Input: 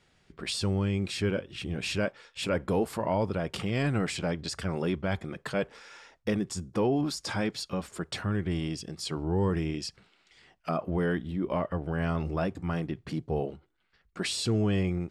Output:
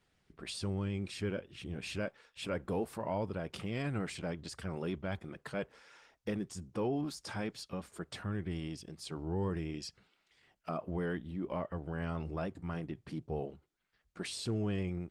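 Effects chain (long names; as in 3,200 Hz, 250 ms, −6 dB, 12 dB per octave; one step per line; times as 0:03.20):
pitch vibrato 9 Hz 21 cents
level −7.5 dB
Opus 24 kbit/s 48,000 Hz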